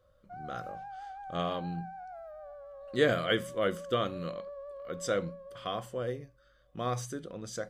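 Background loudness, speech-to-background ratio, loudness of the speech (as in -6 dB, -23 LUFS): -45.5 LUFS, 11.5 dB, -34.0 LUFS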